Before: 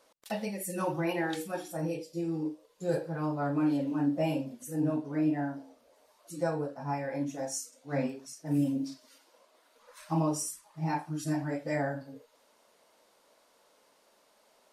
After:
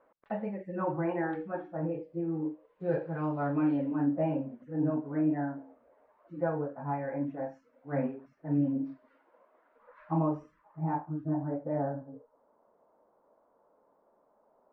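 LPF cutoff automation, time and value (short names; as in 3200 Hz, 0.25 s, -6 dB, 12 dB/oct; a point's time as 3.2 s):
LPF 24 dB/oct
2.26 s 1700 Hz
3.39 s 3100 Hz
4.19 s 1800 Hz
10.51 s 1800 Hz
11.26 s 1100 Hz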